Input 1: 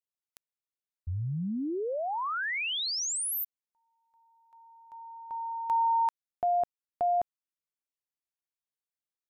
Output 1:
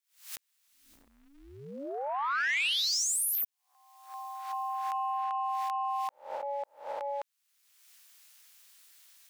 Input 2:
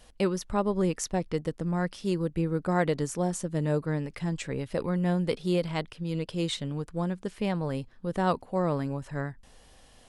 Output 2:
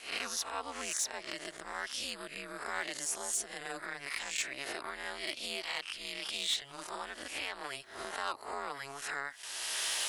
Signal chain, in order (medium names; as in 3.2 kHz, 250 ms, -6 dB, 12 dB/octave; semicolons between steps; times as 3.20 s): reverse spectral sustain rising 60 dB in 0.52 s; recorder AGC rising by 38 dB/s, up to +30 dB; Bessel high-pass 1.9 kHz, order 2; in parallel at +3 dB: compression 6:1, threshold -40 dBFS; on the sum: saturation -21 dBFS; ring modulator 140 Hz